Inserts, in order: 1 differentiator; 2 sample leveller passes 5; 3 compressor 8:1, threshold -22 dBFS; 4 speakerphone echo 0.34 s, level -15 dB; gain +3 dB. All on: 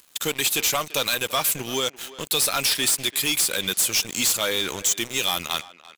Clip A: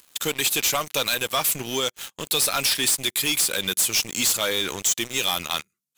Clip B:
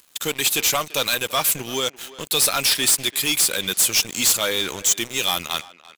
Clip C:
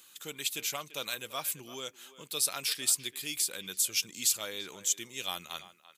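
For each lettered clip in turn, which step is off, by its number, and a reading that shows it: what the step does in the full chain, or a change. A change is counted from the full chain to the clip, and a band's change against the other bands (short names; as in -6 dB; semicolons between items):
4, echo-to-direct -18.0 dB to none; 3, mean gain reduction 1.5 dB; 2, crest factor change +12.0 dB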